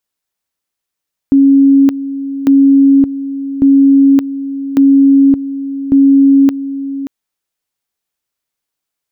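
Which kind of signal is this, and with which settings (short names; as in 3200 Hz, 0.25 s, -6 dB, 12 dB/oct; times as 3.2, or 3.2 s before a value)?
two-level tone 275 Hz -3.5 dBFS, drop 13.5 dB, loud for 0.57 s, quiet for 0.58 s, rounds 5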